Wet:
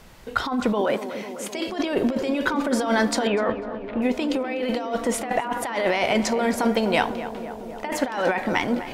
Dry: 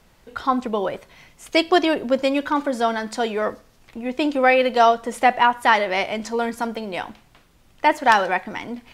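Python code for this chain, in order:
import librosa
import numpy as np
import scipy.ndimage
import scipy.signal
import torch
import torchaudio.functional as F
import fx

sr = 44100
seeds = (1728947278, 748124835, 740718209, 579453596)

y = fx.lowpass(x, sr, hz=3200.0, slope=24, at=(3.27, 4.02))
y = fx.over_compress(y, sr, threshold_db=-26.0, ratio=-1.0)
y = fx.bessel_highpass(y, sr, hz=230.0, order=8, at=(0.81, 1.68))
y = fx.echo_tape(y, sr, ms=251, feedback_pct=85, wet_db=-10.0, lp_hz=1400.0, drive_db=6.0, wow_cents=36)
y = F.gain(torch.from_numpy(y), 2.0).numpy()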